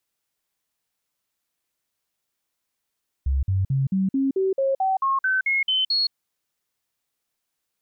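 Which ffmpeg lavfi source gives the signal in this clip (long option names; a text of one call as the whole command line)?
ffmpeg -f lavfi -i "aevalsrc='0.119*clip(min(mod(t,0.22),0.17-mod(t,0.22))/0.005,0,1)*sin(2*PI*67.6*pow(2,floor(t/0.22)/2)*mod(t,0.22))':duration=2.86:sample_rate=44100" out.wav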